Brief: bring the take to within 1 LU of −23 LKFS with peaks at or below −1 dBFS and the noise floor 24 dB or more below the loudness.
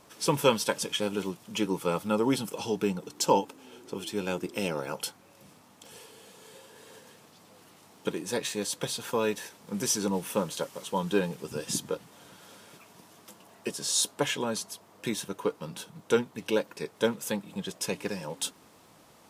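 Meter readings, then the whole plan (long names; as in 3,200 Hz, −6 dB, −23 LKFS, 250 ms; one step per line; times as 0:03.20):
crackle rate 16 per second; integrated loudness −31.0 LKFS; sample peak −10.0 dBFS; target loudness −23.0 LKFS
→ click removal
level +8 dB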